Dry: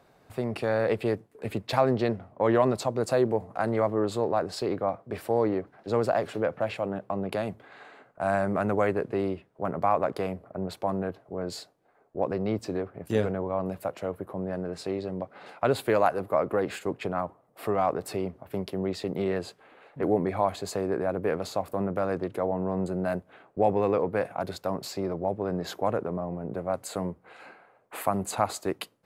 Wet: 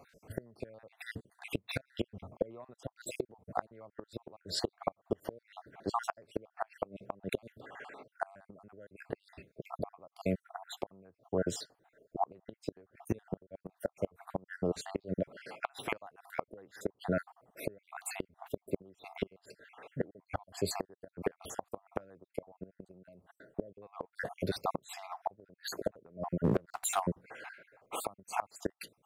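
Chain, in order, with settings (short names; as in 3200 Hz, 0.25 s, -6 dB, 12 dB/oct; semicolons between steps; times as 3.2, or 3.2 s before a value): random spectral dropouts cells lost 54%; 26.44–27 sample leveller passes 2; flipped gate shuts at -22 dBFS, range -30 dB; gain +3 dB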